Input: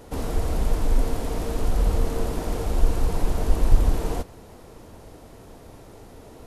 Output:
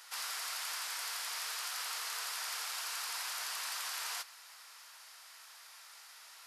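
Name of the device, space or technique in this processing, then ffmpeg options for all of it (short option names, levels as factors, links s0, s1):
headphones lying on a table: -af "highpass=f=1300:w=0.5412,highpass=f=1300:w=1.3066,equalizer=f=4900:t=o:w=0.42:g=6,volume=1.26"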